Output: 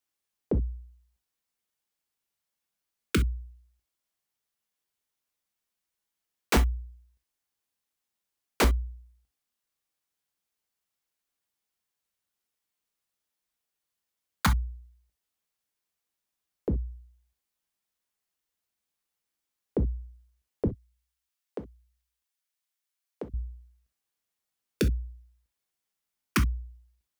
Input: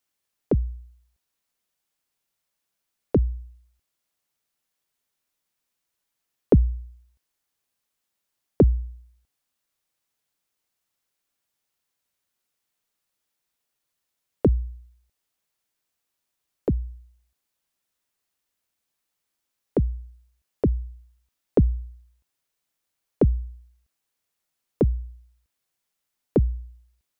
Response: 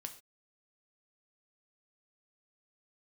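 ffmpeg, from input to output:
-filter_complex "[0:a]asettb=1/sr,asplit=3[a][b][c];[a]atrim=end=20.684[d];[b]atrim=start=20.68:end=23.34,asetpts=PTS-STARTPTS,afade=t=in:d=0.004:c=qsin,afade=t=out:st=2.656:d=0.004:c=qsin,highpass=f=1.4k:p=1[e];[c]atrim=start=23.336[f];[d][e]acrossfade=d=0.004:c1=hsin:c2=qsin[g];[g][f]acrossfade=d=0.004:c1=qsin:c2=hsin,aeval=exprs='(mod(3.76*val(0)+1,2)-1)/3.76':c=same[h];[1:a]atrim=start_sample=2205,atrim=end_sample=3087[i];[h][i]afir=irnorm=-1:irlink=0,volume=-1.5dB"

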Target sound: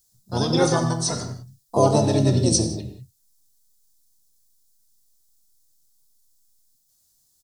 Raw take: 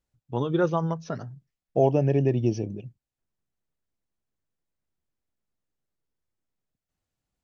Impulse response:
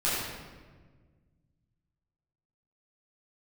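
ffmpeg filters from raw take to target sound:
-filter_complex "[0:a]asplit=3[a][b][c];[b]asetrate=33038,aresample=44100,atempo=1.33484,volume=-6dB[d];[c]asetrate=66075,aresample=44100,atempo=0.66742,volume=-7dB[e];[a][d][e]amix=inputs=3:normalize=0,aexciter=amount=12.1:drive=5.8:freq=3.9k,asplit=2[f][g];[1:a]atrim=start_sample=2205,afade=t=out:st=0.25:d=0.01,atrim=end_sample=11466[h];[g][h]afir=irnorm=-1:irlink=0,volume=-13.5dB[i];[f][i]amix=inputs=2:normalize=0"

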